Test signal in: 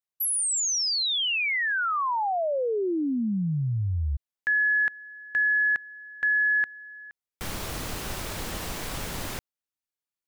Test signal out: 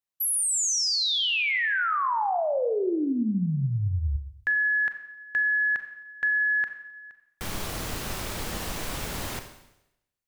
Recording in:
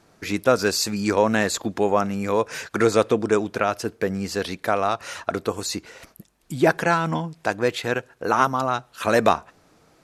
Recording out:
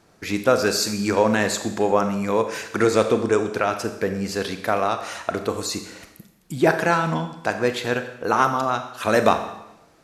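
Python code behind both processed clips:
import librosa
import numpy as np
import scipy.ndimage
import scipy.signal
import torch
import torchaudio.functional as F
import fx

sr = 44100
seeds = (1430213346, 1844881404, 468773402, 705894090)

y = fx.rev_schroeder(x, sr, rt60_s=0.86, comb_ms=29, drr_db=7.5)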